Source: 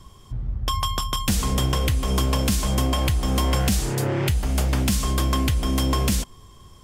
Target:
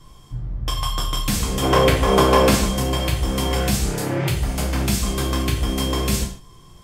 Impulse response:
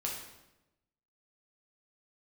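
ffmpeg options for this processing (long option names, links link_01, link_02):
-filter_complex "[0:a]asplit=3[link_01][link_02][link_03];[link_01]afade=type=out:start_time=1.62:duration=0.02[link_04];[link_02]equalizer=frequency=800:width=0.35:gain=13,afade=type=in:start_time=1.62:duration=0.02,afade=type=out:start_time=2.61:duration=0.02[link_05];[link_03]afade=type=in:start_time=2.61:duration=0.02[link_06];[link_04][link_05][link_06]amix=inputs=3:normalize=0[link_07];[1:a]atrim=start_sample=2205,afade=type=out:start_time=0.37:duration=0.01,atrim=end_sample=16758,asetrate=79380,aresample=44100[link_08];[link_07][link_08]afir=irnorm=-1:irlink=0,volume=4.5dB"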